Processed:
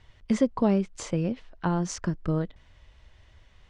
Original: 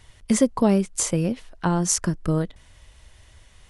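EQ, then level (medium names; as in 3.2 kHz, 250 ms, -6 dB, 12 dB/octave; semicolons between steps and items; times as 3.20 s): Bessel low-pass 6.3 kHz, order 2; distance through air 97 m; -4.0 dB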